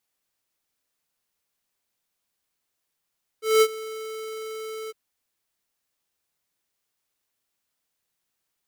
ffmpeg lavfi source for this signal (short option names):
-f lavfi -i "aevalsrc='0.178*(2*lt(mod(439*t,1),0.5)-1)':d=1.506:s=44100,afade=t=in:d=0.196,afade=t=out:st=0.196:d=0.057:silence=0.106,afade=t=out:st=1.48:d=0.026"